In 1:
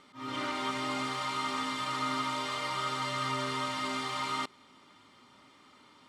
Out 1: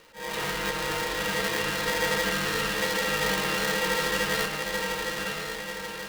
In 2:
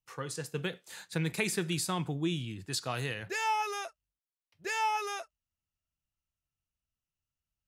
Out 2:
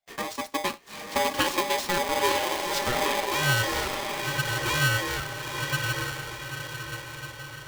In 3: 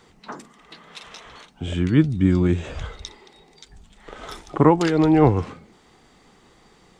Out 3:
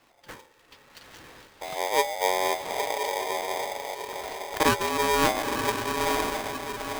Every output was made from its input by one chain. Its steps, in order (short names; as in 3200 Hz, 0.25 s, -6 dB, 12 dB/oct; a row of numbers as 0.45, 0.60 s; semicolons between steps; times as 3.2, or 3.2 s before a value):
median filter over 5 samples; diffused feedback echo 0.95 s, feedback 51%, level -3 dB; frequency shift -39 Hz; polarity switched at an audio rate 700 Hz; match loudness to -27 LUFS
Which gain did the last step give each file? +4.5, +6.0, -8.0 dB